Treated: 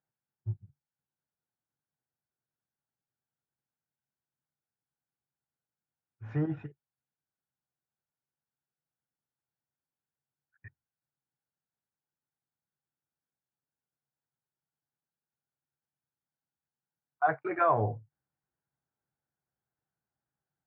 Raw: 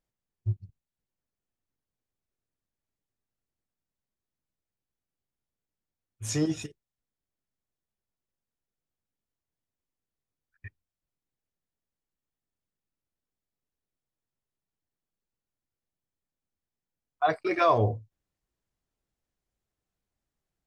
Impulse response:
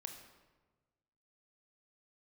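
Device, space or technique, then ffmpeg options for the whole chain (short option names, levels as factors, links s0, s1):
bass cabinet: -af "highpass=f=71:w=0.5412,highpass=f=71:w=1.3066,equalizer=f=90:t=q:w=4:g=-4,equalizer=f=140:t=q:w=4:g=9,equalizer=f=830:t=q:w=4:g=8,equalizer=f=1500:t=q:w=4:g=9,lowpass=f=2000:w=0.5412,lowpass=f=2000:w=1.3066,volume=0.501"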